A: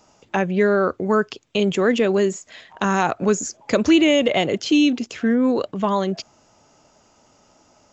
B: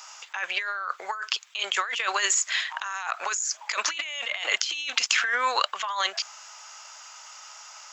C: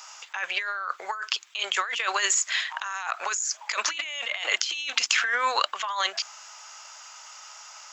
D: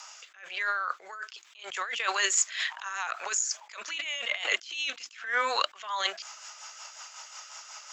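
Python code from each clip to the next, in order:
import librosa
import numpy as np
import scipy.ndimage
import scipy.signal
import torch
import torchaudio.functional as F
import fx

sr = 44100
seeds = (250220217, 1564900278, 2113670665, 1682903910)

y1 = scipy.signal.sosfilt(scipy.signal.butter(4, 1100.0, 'highpass', fs=sr, output='sos'), x)
y1 = fx.over_compress(y1, sr, threshold_db=-37.0, ratio=-1.0)
y1 = y1 * 10.0 ** (8.5 / 20.0)
y2 = fx.hum_notches(y1, sr, base_hz=50, count=7)
y3 = fx.rotary_switch(y2, sr, hz=1.1, then_hz=5.5, switch_at_s=1.74)
y3 = fx.attack_slew(y3, sr, db_per_s=120.0)
y3 = y3 * 10.0 ** (2.5 / 20.0)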